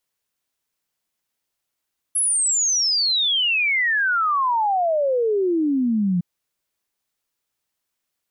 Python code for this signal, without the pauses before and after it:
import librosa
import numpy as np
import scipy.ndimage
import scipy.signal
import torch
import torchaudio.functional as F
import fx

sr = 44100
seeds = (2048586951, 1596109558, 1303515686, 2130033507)

y = fx.ess(sr, length_s=4.06, from_hz=11000.0, to_hz=170.0, level_db=-17.0)